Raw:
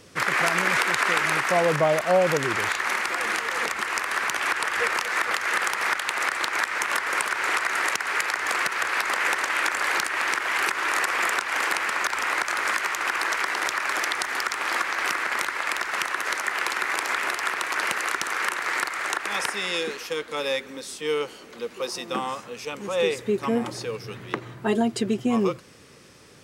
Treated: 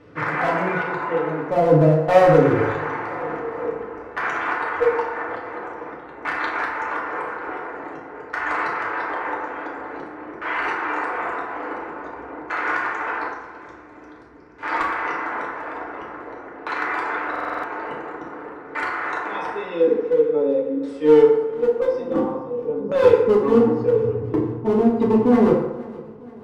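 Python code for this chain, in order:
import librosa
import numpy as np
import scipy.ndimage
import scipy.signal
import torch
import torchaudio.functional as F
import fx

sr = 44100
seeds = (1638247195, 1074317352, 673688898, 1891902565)

p1 = fx.noise_reduce_blind(x, sr, reduce_db=8)
p2 = fx.curve_eq(p1, sr, hz=(110.0, 1300.0, 6600.0), db=(0, -21, -2), at=(13.28, 14.63))
p3 = fx.rider(p2, sr, range_db=3, speed_s=0.5)
p4 = p2 + (p3 * 10.0 ** (-0.5 / 20.0))
p5 = 10.0 ** (-6.0 / 20.0) * np.tanh(p4 / 10.0 ** (-6.0 / 20.0))
p6 = fx.filter_lfo_lowpass(p5, sr, shape='saw_down', hz=0.48, low_hz=360.0, high_hz=1700.0, q=0.74)
p7 = fx.clip_asym(p6, sr, top_db=-20.0, bottom_db=-14.0)
p8 = p7 + fx.echo_feedback(p7, sr, ms=472, feedback_pct=51, wet_db=-20, dry=0)
p9 = fx.rev_fdn(p8, sr, rt60_s=1.0, lf_ratio=0.8, hf_ratio=0.55, size_ms=20.0, drr_db=-4.0)
p10 = fx.buffer_glitch(p9, sr, at_s=(17.31,), block=2048, repeats=6)
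y = p10 * 10.0 ** (1.0 / 20.0)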